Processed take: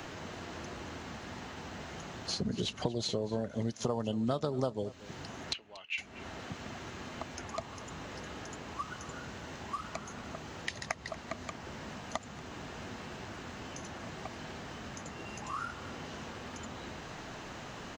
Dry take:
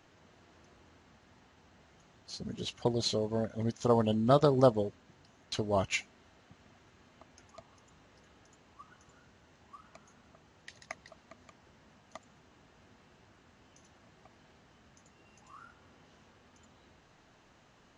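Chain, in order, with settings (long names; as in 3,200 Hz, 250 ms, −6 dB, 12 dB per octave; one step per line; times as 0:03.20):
downward compressor 5 to 1, threshold −44 dBFS, peak gain reduction 22.5 dB
0:05.53–0:05.98: resonant band-pass 2,700 Hz, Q 4.9
single-tap delay 234 ms −20.5 dB
multiband upward and downward compressor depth 40%
level +15 dB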